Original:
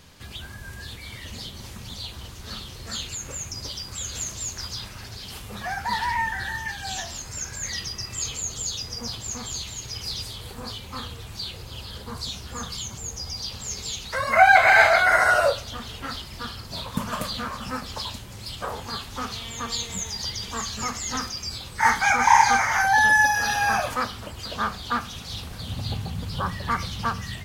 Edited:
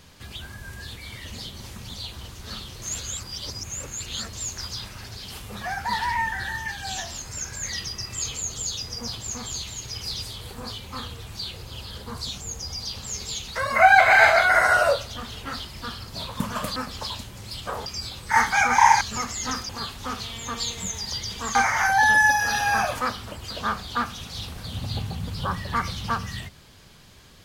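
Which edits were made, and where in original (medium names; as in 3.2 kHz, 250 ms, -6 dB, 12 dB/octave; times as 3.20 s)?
2.82–4.33 s: reverse
12.38–12.95 s: delete
17.33–17.71 s: delete
18.81–20.67 s: swap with 21.35–22.50 s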